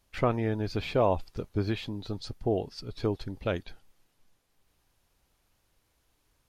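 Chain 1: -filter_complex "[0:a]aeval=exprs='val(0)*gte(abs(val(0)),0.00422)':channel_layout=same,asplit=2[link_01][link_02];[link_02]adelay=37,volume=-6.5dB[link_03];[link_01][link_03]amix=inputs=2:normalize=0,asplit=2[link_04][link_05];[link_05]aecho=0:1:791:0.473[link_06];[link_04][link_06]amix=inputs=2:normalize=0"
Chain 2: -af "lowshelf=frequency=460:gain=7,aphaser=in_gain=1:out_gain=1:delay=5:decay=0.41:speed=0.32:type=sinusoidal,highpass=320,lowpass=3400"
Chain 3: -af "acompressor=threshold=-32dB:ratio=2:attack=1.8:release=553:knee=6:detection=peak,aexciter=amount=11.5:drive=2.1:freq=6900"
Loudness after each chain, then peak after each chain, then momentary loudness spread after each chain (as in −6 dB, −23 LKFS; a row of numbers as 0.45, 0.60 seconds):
−30.5, −29.5, −37.5 LKFS; −11.5, −9.5, −21.5 dBFS; 13, 13, 22 LU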